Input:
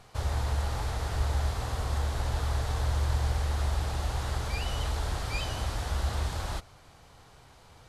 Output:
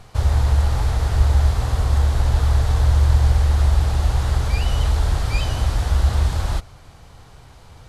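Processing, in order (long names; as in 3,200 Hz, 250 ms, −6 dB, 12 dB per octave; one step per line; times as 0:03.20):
low-shelf EQ 160 Hz +8.5 dB
level +6 dB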